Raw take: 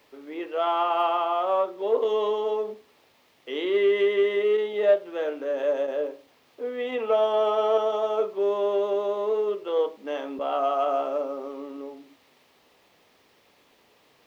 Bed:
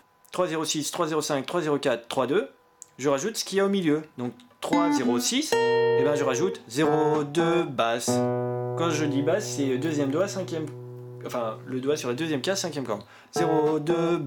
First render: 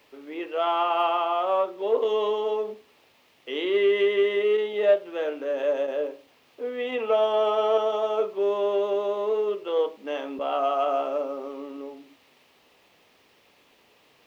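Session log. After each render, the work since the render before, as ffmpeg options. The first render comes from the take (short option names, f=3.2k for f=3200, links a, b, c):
-af "equalizer=f=2.7k:w=2.8:g=4"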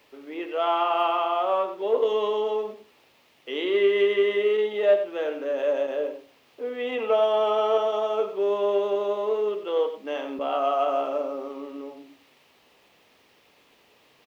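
-af "aecho=1:1:94:0.299"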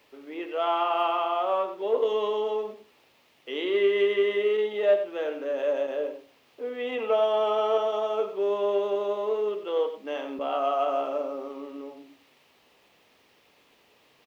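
-af "volume=-2dB"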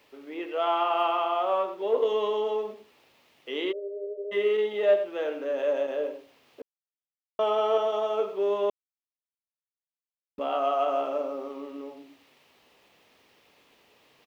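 -filter_complex "[0:a]asplit=3[a][b][c];[a]afade=t=out:st=3.71:d=0.02[d];[b]asuperpass=centerf=530:order=12:qfactor=2.3,afade=t=in:st=3.71:d=0.02,afade=t=out:st=4.31:d=0.02[e];[c]afade=t=in:st=4.31:d=0.02[f];[d][e][f]amix=inputs=3:normalize=0,asplit=5[g][h][i][j][k];[g]atrim=end=6.62,asetpts=PTS-STARTPTS,afade=t=out:st=6.616:d=0.004:c=hsin[l];[h]atrim=start=6.62:end=7.39,asetpts=PTS-STARTPTS,volume=0[m];[i]atrim=start=7.39:end=8.7,asetpts=PTS-STARTPTS,afade=t=in:d=0.004:c=hsin,afade=t=out:st=1.306:d=0.004:c=hsin[n];[j]atrim=start=8.7:end=10.38,asetpts=PTS-STARTPTS,volume=0[o];[k]atrim=start=10.38,asetpts=PTS-STARTPTS,afade=t=in:d=0.004:c=hsin[p];[l][m][n][o][p]concat=n=5:v=0:a=1"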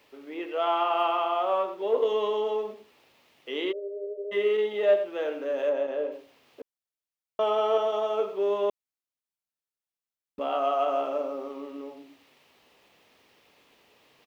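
-filter_complex "[0:a]asettb=1/sr,asplit=3[a][b][c];[a]atrim=end=5.694[d];[b]atrim=start=5.69:end=6.12,asetpts=PTS-STARTPTS,afade=t=in:d=0.004:c=qsin,afade=t=out:st=0.426:d=0.004:c=qsin,lowpass=f=2.6k:p=1[e];[c]atrim=start=6.116[f];[d][e]acrossfade=d=0.004:c1=hsin:c2=qsin[g];[g][f]acrossfade=d=0.004:c1=qsin:c2=hsin"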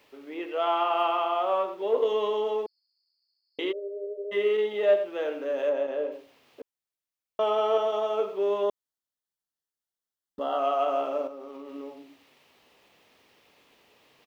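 -filter_complex "[0:a]asettb=1/sr,asplit=3[a][b][c];[a]atrim=end=2.664[d];[b]atrim=start=2.66:end=3.59,asetpts=PTS-STARTPTS,afade=t=in:d=0.004:c=qsin,afade=t=out:st=0.926:d=0.004:c=qsin,asuperpass=centerf=4700:order=20:qfactor=5.2[e];[c]atrim=start=3.586[f];[d][e]acrossfade=d=0.004:c1=hsin:c2=qsin[g];[g][f]acrossfade=d=0.004:c1=qsin:c2=hsin,asettb=1/sr,asplit=3[h][i][j];[h]atrim=end=8.634[k];[i]atrim=start=8.63:end=10.59,asetpts=PTS-STARTPTS,afade=t=in:d=0.004:c=qsin,afade=t=out:st=1.956:d=0.004:c=qsin,asuperstop=centerf=2400:order=4:qfactor=3[l];[j]atrim=start=10.586[m];[k][l]acrossfade=d=0.004:c1=hsin:c2=qsin[n];[n][m]acrossfade=d=0.004:c1=qsin:c2=hsin,asettb=1/sr,asplit=3[o][p][q];[o]atrim=end=11.274[r];[p]atrim=start=11.27:end=11.75,asetpts=PTS-STARTPTS,afade=t=in:d=0.004:c=qsin,afade=t=out:st=0.476:d=0.004:c=qsin,acompressor=threshold=-37dB:ratio=6:attack=3.2:release=140:knee=1:detection=peak[s];[q]atrim=start=11.746[t];[r][s]acrossfade=d=0.004:c1=hsin:c2=qsin[u];[u][t]acrossfade=d=0.004:c1=qsin:c2=hsin"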